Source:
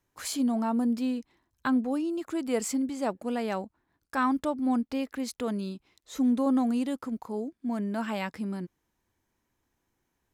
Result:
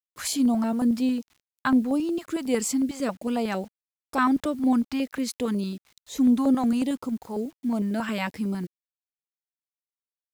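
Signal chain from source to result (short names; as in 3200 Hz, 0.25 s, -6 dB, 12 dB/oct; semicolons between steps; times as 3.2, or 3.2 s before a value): requantised 10-bit, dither none; stepped notch 11 Hz 310–1700 Hz; gain +5.5 dB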